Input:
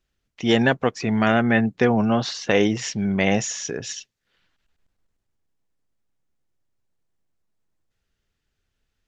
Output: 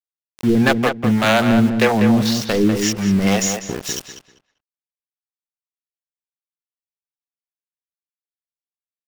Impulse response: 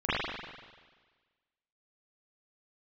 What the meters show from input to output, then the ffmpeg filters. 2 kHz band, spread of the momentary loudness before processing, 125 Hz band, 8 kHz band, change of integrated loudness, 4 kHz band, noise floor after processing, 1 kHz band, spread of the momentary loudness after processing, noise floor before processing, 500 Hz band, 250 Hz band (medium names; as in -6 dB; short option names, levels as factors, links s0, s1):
+2.5 dB, 10 LU, +5.0 dB, no reading, +4.0 dB, +4.5 dB, under -85 dBFS, +3.5 dB, 11 LU, -78 dBFS, +2.5 dB, +5.5 dB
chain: -filter_complex "[0:a]aeval=exprs='0.266*(abs(mod(val(0)/0.266+3,4)-2)-1)':c=same,acrossover=split=400[s0][s1];[s0]aeval=exprs='val(0)*(1-1/2+1/2*cos(2*PI*1.9*n/s))':c=same[s2];[s1]aeval=exprs='val(0)*(1-1/2-1/2*cos(2*PI*1.9*n/s))':c=same[s3];[s2][s3]amix=inputs=2:normalize=0,aeval=exprs='val(0)*gte(abs(val(0)),0.02)':c=same,asplit=2[s4][s5];[s5]adelay=196,lowpass=f=2700:p=1,volume=0.501,asplit=2[s6][s7];[s7]adelay=196,lowpass=f=2700:p=1,volume=0.25,asplit=2[s8][s9];[s9]adelay=196,lowpass=f=2700:p=1,volume=0.25[s10];[s4][s6][s8][s10]amix=inputs=4:normalize=0,volume=2.66"